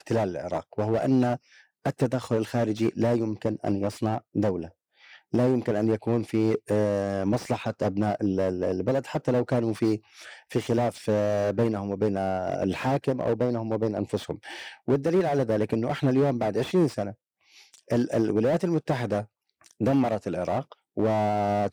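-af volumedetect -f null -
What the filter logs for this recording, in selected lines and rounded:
mean_volume: -26.2 dB
max_volume: -11.7 dB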